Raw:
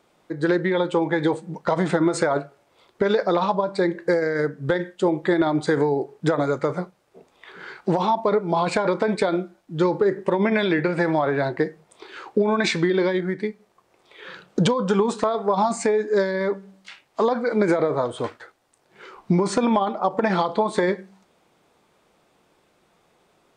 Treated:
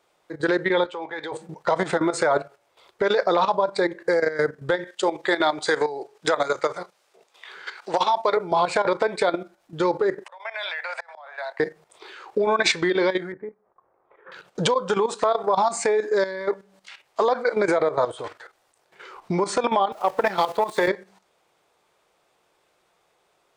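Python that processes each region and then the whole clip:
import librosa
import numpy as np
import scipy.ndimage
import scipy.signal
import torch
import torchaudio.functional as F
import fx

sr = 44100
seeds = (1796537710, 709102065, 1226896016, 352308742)

y = fx.chain(x, sr, fx.highpass(hz=790.0, slope=6),
    fx.air_absorb(metres=100.0), at=(0.85, 1.32))
y = fx.chain(y, sr, fx.highpass(hz=400.0, slope=6),
    fx.peak_eq(hz=5100.0, db=6.0, octaves=2.5), at=(4.87, 8.37))
y = fx.chain(y, sr, fx.steep_highpass(hz=610.0, slope=48),
    fx.auto_swell(attack_ms=469.0), at=(10.24, 11.6))
y = fx.chain(y, sr, fx.lowpass(hz=1400.0, slope=24),
    fx.comb_fb(f0_hz=270.0, decay_s=0.15, harmonics='all', damping=0.0, mix_pct=40), at=(13.32, 14.32))
y = fx.chain(y, sr, fx.zero_step(step_db=-26.5),
    fx.power_curve(exponent=1.4),
    fx.band_widen(depth_pct=40), at=(19.92, 20.88))
y = fx.peak_eq(y, sr, hz=240.0, db=-9.0, octaves=0.88)
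y = fx.level_steps(y, sr, step_db=12)
y = fx.bass_treble(y, sr, bass_db=-7, treble_db=1)
y = F.gain(torch.from_numpy(y), 5.5).numpy()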